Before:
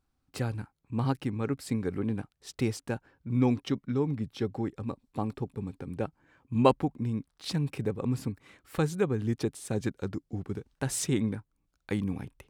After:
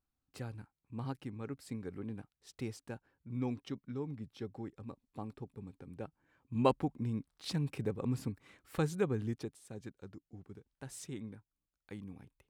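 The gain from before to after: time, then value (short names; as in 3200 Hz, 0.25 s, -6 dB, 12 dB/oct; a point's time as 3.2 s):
6.02 s -11.5 dB
6.89 s -5 dB
9.19 s -5 dB
9.62 s -16 dB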